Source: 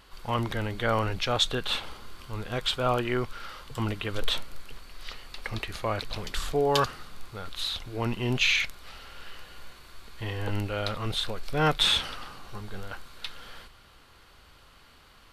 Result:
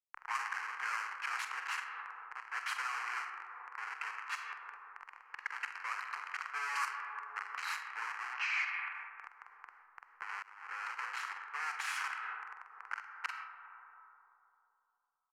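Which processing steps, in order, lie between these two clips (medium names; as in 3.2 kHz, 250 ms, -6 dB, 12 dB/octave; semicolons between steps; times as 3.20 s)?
Schmitt trigger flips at -32.5 dBFS; doubling 46 ms -12.5 dB; peak limiter -34 dBFS, peak gain reduction 11 dB; algorithmic reverb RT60 3.2 s, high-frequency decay 0.3×, pre-delay 20 ms, DRR 6 dB; dynamic bell 2.5 kHz, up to +3 dB, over -54 dBFS, Q 0.71; 8.33–8.93 s: low-pass 6.2 kHz -> 3.6 kHz 24 dB/octave; 10.42–10.99 s: expander -27 dBFS; compression 8:1, threshold -44 dBFS, peak gain reduction 12 dB; inverse Chebyshev high-pass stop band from 250 Hz, stop band 60 dB; static phaser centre 1.5 kHz, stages 4; level-controlled noise filter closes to 1.8 kHz, open at -43.5 dBFS; trim +17.5 dB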